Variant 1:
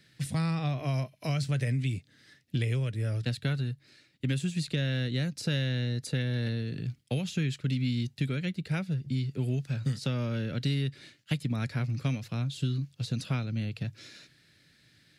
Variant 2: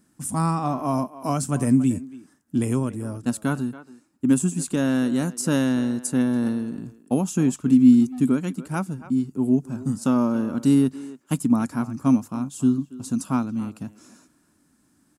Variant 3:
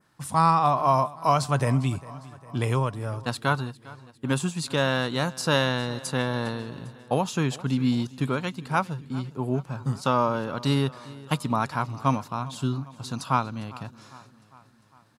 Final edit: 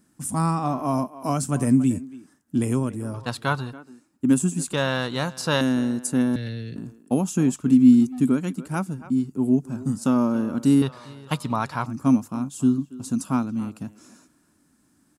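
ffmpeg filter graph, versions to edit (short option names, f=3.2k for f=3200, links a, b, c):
-filter_complex "[2:a]asplit=3[a][b][c];[1:a]asplit=5[d][e][f][g][h];[d]atrim=end=3.142[i];[a]atrim=start=3.138:end=3.732[j];[e]atrim=start=3.728:end=4.732[k];[b]atrim=start=4.728:end=5.612[l];[f]atrim=start=5.608:end=6.362[m];[0:a]atrim=start=6.358:end=6.762[n];[g]atrim=start=6.758:end=10.822[o];[c]atrim=start=10.818:end=11.862[p];[h]atrim=start=11.858[q];[i][j]acrossfade=d=0.004:c1=hsin:c2=hsin[r];[r][k]acrossfade=d=0.004:c1=hsin:c2=hsin[s];[s][l]acrossfade=d=0.004:c1=hsin:c2=hsin[t];[t][m]acrossfade=d=0.004:c1=hsin:c2=hsin[u];[u][n]acrossfade=d=0.004:c1=hsin:c2=hsin[v];[v][o]acrossfade=d=0.004:c1=hsin:c2=hsin[w];[w][p]acrossfade=d=0.004:c1=hsin:c2=hsin[x];[x][q]acrossfade=d=0.004:c1=hsin:c2=hsin"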